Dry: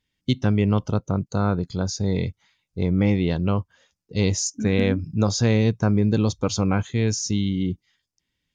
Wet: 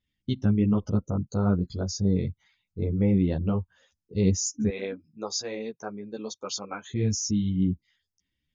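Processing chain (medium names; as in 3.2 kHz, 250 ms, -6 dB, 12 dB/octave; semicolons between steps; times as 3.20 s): resonances exaggerated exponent 1.5; 4.69–6.89 s: high-pass 610 Hz 12 dB/octave; three-phase chorus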